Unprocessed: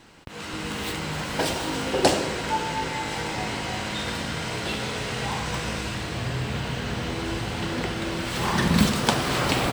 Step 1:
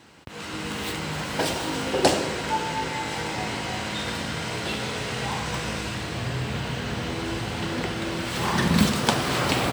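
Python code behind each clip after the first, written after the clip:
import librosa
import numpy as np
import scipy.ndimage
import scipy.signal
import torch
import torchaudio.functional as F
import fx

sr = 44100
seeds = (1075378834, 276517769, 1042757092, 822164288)

y = scipy.signal.sosfilt(scipy.signal.butter(2, 61.0, 'highpass', fs=sr, output='sos'), x)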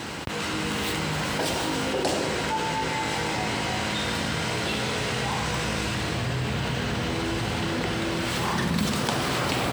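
y = fx.env_flatten(x, sr, amount_pct=70)
y = F.gain(torch.from_numpy(y), -8.5).numpy()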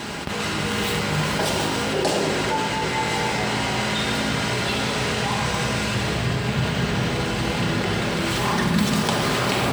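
y = fx.room_shoebox(x, sr, seeds[0], volume_m3=2400.0, walls='mixed', distance_m=1.3)
y = F.gain(torch.from_numpy(y), 2.5).numpy()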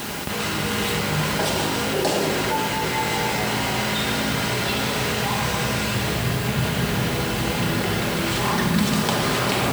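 y = fx.quant_dither(x, sr, seeds[1], bits=6, dither='triangular')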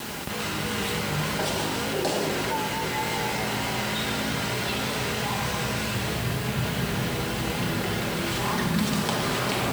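y = fx.vibrato(x, sr, rate_hz=3.3, depth_cents=41.0)
y = F.gain(torch.from_numpy(y), -4.5).numpy()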